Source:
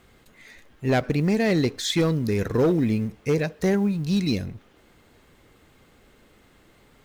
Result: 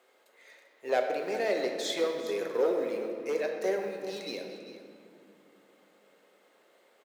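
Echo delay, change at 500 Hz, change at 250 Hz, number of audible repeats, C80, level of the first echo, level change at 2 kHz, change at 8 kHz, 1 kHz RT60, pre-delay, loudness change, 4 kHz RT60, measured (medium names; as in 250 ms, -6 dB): 396 ms, -3.5 dB, -16.5 dB, 1, 5.0 dB, -14.5 dB, -6.5 dB, -8.0 dB, 2.0 s, 3 ms, -8.0 dB, 1.4 s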